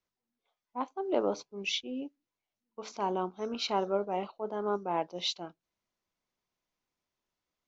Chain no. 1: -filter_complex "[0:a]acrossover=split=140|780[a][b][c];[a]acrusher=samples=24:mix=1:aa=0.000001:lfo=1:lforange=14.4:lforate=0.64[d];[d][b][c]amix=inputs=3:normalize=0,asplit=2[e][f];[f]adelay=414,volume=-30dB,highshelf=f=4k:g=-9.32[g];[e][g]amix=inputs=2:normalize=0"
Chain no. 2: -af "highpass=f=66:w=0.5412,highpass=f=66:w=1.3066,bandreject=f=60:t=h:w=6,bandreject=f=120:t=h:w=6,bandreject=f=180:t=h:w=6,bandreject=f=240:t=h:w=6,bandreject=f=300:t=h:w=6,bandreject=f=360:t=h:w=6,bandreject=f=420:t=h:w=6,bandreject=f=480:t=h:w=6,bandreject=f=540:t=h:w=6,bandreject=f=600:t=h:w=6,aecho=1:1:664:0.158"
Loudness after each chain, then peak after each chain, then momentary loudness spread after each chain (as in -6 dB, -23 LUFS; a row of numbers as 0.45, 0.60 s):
-34.0, -34.5 LUFS; -16.5, -16.5 dBFS; 14, 18 LU